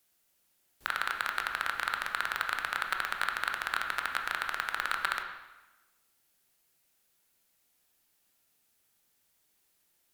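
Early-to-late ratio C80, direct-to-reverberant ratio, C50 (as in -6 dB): 8.0 dB, 3.0 dB, 5.5 dB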